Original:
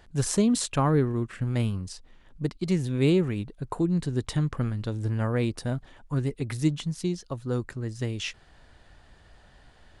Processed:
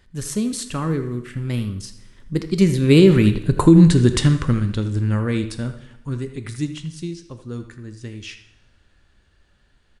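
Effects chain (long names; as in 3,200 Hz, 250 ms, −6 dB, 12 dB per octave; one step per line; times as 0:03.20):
source passing by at 0:03.60, 13 m/s, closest 5.1 metres
parametric band 740 Hz −10 dB 0.99 octaves
far-end echo of a speakerphone 80 ms, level −11 dB
convolution reverb, pre-delay 3 ms, DRR 9.5 dB
boost into a limiter +19.5 dB
level −1 dB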